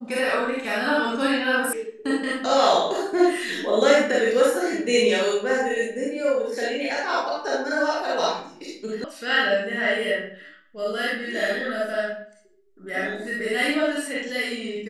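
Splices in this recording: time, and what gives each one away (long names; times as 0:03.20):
0:01.73: cut off before it has died away
0:09.04: cut off before it has died away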